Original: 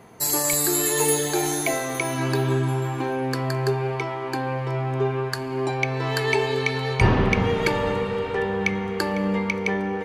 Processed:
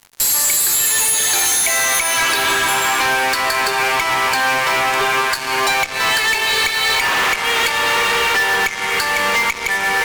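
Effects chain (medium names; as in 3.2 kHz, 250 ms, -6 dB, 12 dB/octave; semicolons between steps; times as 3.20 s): high-pass 1.5 kHz 12 dB/octave; compression 10:1, threshold -35 dBFS, peak gain reduction 16.5 dB; fuzz box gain 44 dB, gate -51 dBFS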